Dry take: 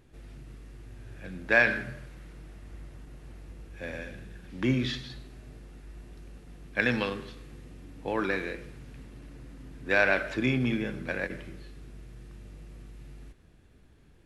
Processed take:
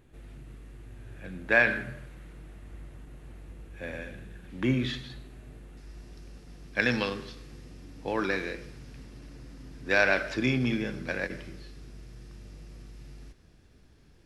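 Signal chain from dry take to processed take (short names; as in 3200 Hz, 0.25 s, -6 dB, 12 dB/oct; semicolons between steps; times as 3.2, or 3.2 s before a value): bell 5200 Hz -5.5 dB 0.57 oct, from 5.77 s +9 dB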